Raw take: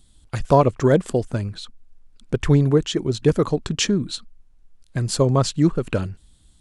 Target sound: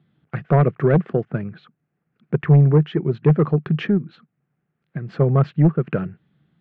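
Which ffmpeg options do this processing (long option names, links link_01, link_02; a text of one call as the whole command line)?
ffmpeg -i in.wav -filter_complex "[0:a]highpass=frequency=140:width=0.5412,highpass=frequency=140:width=1.3066,equalizer=frequency=150:width_type=q:width=4:gain=9,equalizer=frequency=270:width_type=q:width=4:gain=-7,equalizer=frequency=570:width_type=q:width=4:gain=-5,equalizer=frequency=960:width_type=q:width=4:gain=-9,lowpass=frequency=2100:width=0.5412,lowpass=frequency=2100:width=1.3066,asplit=3[link_01][link_02][link_03];[link_01]afade=type=out:start_time=3.97:duration=0.02[link_04];[link_02]acompressor=threshold=-29dB:ratio=4,afade=type=in:start_time=3.97:duration=0.02,afade=type=out:start_time=5.09:duration=0.02[link_05];[link_03]afade=type=in:start_time=5.09:duration=0.02[link_06];[link_04][link_05][link_06]amix=inputs=3:normalize=0,aeval=exprs='0.708*sin(PI/2*1.58*val(0)/0.708)':channel_layout=same,volume=-5dB" out.wav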